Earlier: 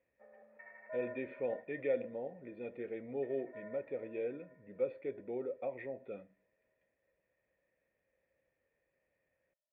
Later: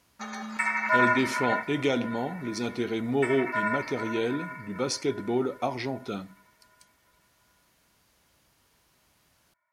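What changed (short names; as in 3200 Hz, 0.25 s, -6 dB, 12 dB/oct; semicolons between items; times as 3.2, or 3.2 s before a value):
background: remove band-pass 560 Hz, Q 2.9; master: remove vocal tract filter e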